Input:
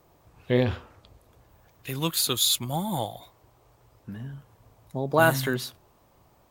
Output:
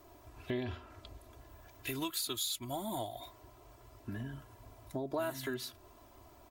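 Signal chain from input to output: comb 3 ms, depth 86%; compression 4:1, threshold -37 dBFS, peak gain reduction 20 dB

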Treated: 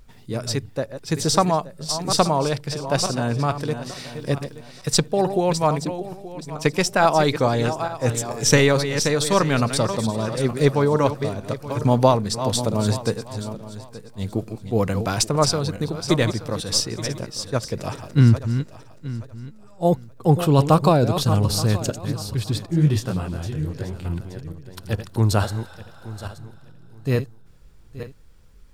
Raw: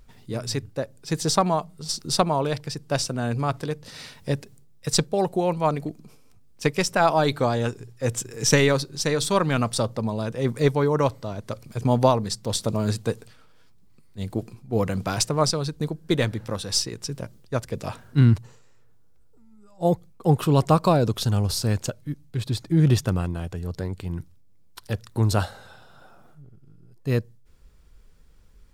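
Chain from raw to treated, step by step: backward echo that repeats 438 ms, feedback 46%, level -9.5 dB; 22.66–24.05 s: detune thickener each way 60 cents; trim +2.5 dB

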